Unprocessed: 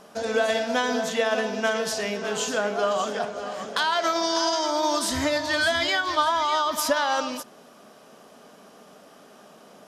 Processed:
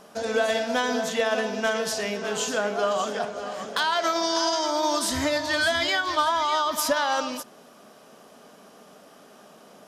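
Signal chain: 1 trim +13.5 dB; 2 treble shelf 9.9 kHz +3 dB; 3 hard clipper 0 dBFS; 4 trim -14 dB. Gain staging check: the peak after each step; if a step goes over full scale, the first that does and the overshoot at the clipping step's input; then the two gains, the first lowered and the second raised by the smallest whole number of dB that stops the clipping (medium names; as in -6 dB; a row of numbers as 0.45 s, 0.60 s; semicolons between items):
+3.5 dBFS, +3.5 dBFS, 0.0 dBFS, -14.0 dBFS; step 1, 3.5 dB; step 1 +9.5 dB, step 4 -10 dB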